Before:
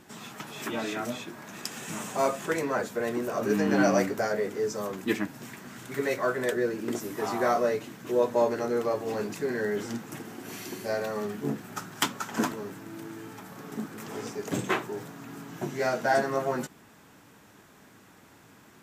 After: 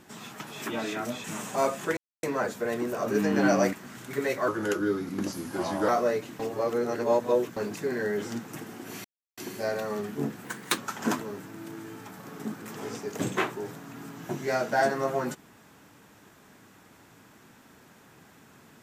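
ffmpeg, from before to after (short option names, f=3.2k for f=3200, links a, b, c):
-filter_complex "[0:a]asplit=11[a][b][c][d][e][f][g][h][i][j][k];[a]atrim=end=1.242[l];[b]atrim=start=1.848:end=2.58,asetpts=PTS-STARTPTS,afade=t=out:st=0.728:d=0.004:c=hsin,apad=pad_dur=0.26[m];[c]atrim=start=2.58:end=4.082,asetpts=PTS-STARTPTS,afade=t=in:d=0.004:c=hsin[n];[d]atrim=start=5.538:end=6.294[o];[e]atrim=start=6.29:end=7.47,asetpts=PTS-STARTPTS,asetrate=37044,aresample=44100[p];[f]atrim=start=7.466:end=7.982[q];[g]atrim=start=7.978:end=9.152,asetpts=PTS-STARTPTS,areverse[r];[h]atrim=start=9.148:end=10.63,asetpts=PTS-STARTPTS,afade=t=out:st=1.478:d=0.004:c=hsin,apad=pad_dur=0.33[s];[i]atrim=start=10.63:end=11.704,asetpts=PTS-STARTPTS,afade=t=in:d=0.004:c=hsin[t];[j]atrim=start=11.7:end=12.1,asetpts=PTS-STARTPTS,asetrate=52920,aresample=44100[u];[k]atrim=start=12.096[v];[m][n]concat=n=2:v=0:a=1[w];[l][w]acrossfade=d=0.004:c1=hsin:c2=hsin[x];[x][o]acrossfade=d=0.004:c1=hsin:c2=hsin[y];[y][p]acrossfade=d=0.004:c1=hsin:c2=hsin[z];[z][q]acrossfade=d=0.004:c1=hsin:c2=hsin[aa];[aa][r]acrossfade=d=0.004:c1=hsin:c2=hsin[ab];[s][t]concat=n=2:v=0:a=1[ac];[ab][ac]acrossfade=d=0.004:c1=hsin:c2=hsin[ad];[ad][u]acrossfade=d=0.004:c1=hsin:c2=hsin[ae];[ae][v]acrossfade=d=0.004:c1=hsin:c2=hsin"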